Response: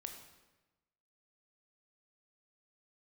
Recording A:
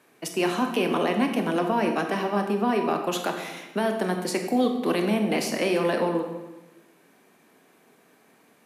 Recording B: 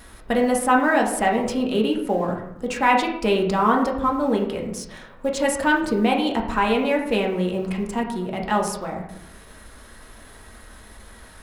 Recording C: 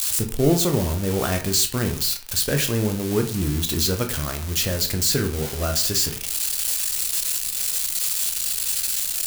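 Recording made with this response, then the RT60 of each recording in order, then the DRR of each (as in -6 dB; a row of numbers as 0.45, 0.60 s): A; 1.1, 0.80, 0.45 s; 4.0, -0.5, 5.0 dB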